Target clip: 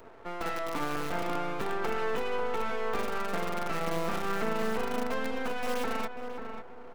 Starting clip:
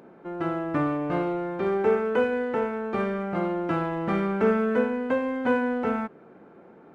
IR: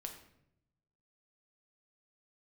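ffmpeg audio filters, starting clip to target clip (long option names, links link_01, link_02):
-filter_complex "[0:a]acrossover=split=290|740|1500[link_01][link_02][link_03][link_04];[link_01]acompressor=threshold=-39dB:ratio=4[link_05];[link_02]acompressor=threshold=-37dB:ratio=4[link_06];[link_03]acompressor=threshold=-39dB:ratio=4[link_07];[link_04]acompressor=threshold=-40dB:ratio=4[link_08];[link_05][link_06][link_07][link_08]amix=inputs=4:normalize=0,asuperstop=centerf=1800:order=20:qfactor=3.8,acrossover=split=300|540[link_09][link_10][link_11];[link_09]acrusher=bits=5:mix=0:aa=0.000001[link_12];[link_12][link_10][link_11]amix=inputs=3:normalize=0,aecho=1:1:4.4:0.42,alimiter=level_in=0.5dB:limit=-24dB:level=0:latency=1:release=47,volume=-0.5dB,highpass=frequency=140:poles=1,aeval=exprs='max(val(0),0)':channel_layout=same,asplit=2[link_13][link_14];[link_14]adelay=541,lowpass=frequency=1600:poles=1,volume=-6.5dB,asplit=2[link_15][link_16];[link_16]adelay=541,lowpass=frequency=1600:poles=1,volume=0.28,asplit=2[link_17][link_18];[link_18]adelay=541,lowpass=frequency=1600:poles=1,volume=0.28,asplit=2[link_19][link_20];[link_20]adelay=541,lowpass=frequency=1600:poles=1,volume=0.28[link_21];[link_13][link_15][link_17][link_19][link_21]amix=inputs=5:normalize=0,volume=5.5dB"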